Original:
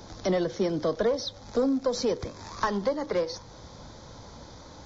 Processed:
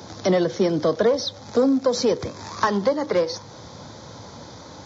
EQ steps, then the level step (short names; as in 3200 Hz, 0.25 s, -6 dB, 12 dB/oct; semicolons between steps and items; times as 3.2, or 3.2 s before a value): HPF 86 Hz 24 dB/oct; +6.5 dB